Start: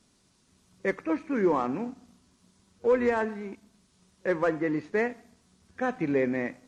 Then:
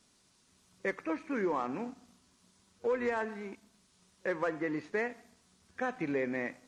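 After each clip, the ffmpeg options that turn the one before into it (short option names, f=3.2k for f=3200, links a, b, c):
-af "lowshelf=f=480:g=-7,acompressor=threshold=-31dB:ratio=2"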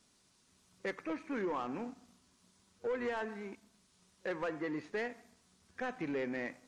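-af "asoftclip=type=tanh:threshold=-27.5dB,volume=-2dB"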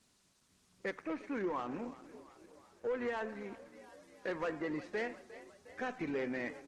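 -filter_complex "[0:a]asplit=7[a][b][c][d][e][f][g];[b]adelay=356,afreqshift=32,volume=-16.5dB[h];[c]adelay=712,afreqshift=64,volume=-20.9dB[i];[d]adelay=1068,afreqshift=96,volume=-25.4dB[j];[e]adelay=1424,afreqshift=128,volume=-29.8dB[k];[f]adelay=1780,afreqshift=160,volume=-34.2dB[l];[g]adelay=2136,afreqshift=192,volume=-38.7dB[m];[a][h][i][j][k][l][m]amix=inputs=7:normalize=0" -ar 48000 -c:a libopus -b:a 16k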